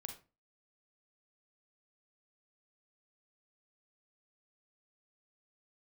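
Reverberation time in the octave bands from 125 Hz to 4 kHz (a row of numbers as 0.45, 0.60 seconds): 0.40, 0.40, 0.35, 0.30, 0.25, 0.20 seconds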